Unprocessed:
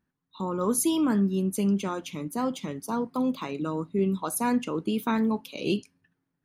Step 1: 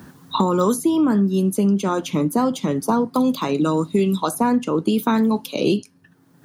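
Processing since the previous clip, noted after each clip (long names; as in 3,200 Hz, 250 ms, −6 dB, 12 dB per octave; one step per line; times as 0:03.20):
high-pass filter 85 Hz
parametric band 2,300 Hz −6.5 dB 0.89 octaves
multiband upward and downward compressor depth 100%
level +7.5 dB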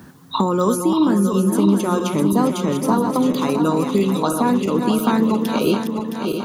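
feedback delay that plays each chunk backwards 333 ms, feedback 74%, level −6 dB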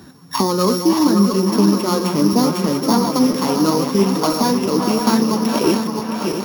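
samples sorted by size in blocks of 8 samples
flanger 0.71 Hz, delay 2.4 ms, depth 9.2 ms, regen +56%
delay with a band-pass on its return 565 ms, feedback 55%, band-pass 1,400 Hz, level −6 dB
level +5.5 dB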